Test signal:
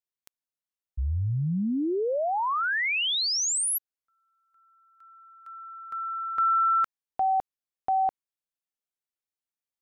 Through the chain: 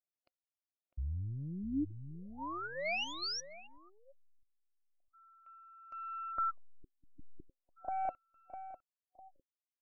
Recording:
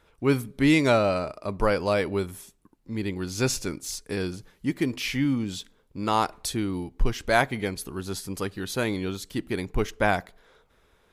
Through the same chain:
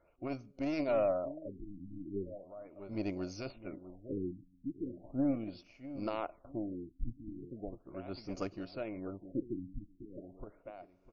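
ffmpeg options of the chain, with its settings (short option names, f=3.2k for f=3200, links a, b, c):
-filter_complex "[0:a]aeval=exprs='0.531*(cos(1*acos(clip(val(0)/0.531,-1,1)))-cos(1*PI/2))+0.168*(cos(3*acos(clip(val(0)/0.531,-1,1)))-cos(3*PI/2))+0.00841*(cos(5*acos(clip(val(0)/0.531,-1,1)))-cos(5*PI/2))':c=same,areverse,acompressor=threshold=-31dB:ratio=12:attack=0.32:release=76:knee=1:detection=peak,areverse,aeval=exprs='0.0596*(cos(1*acos(clip(val(0)/0.0596,-1,1)))-cos(1*PI/2))+0.0106*(cos(4*acos(clip(val(0)/0.0596,-1,1)))-cos(4*PI/2))+0.00237*(cos(6*acos(clip(val(0)/0.0596,-1,1)))-cos(6*PI/2))+0.00119*(cos(8*acos(clip(val(0)/0.0596,-1,1)))-cos(8*PI/2))':c=same,superequalizer=6b=2:8b=3.55:11b=0.398:13b=0.282,alimiter=level_in=5.5dB:limit=-24dB:level=0:latency=1:release=387,volume=-5.5dB,asplit=2[a][b];[b]adelay=653,lowpass=f=2.1k:p=1,volume=-11dB,asplit=2[c][d];[d]adelay=653,lowpass=f=2.1k:p=1,volume=0.3,asplit=2[e][f];[f]adelay=653,lowpass=f=2.1k:p=1,volume=0.3[g];[a][c][e][g]amix=inputs=4:normalize=0,tremolo=f=0.95:d=0.46,afftfilt=real='re*lt(b*sr/1024,300*pow(7100/300,0.5+0.5*sin(2*PI*0.38*pts/sr)))':imag='im*lt(b*sr/1024,300*pow(7100/300,0.5+0.5*sin(2*PI*0.38*pts/sr)))':win_size=1024:overlap=0.75,volume=7.5dB"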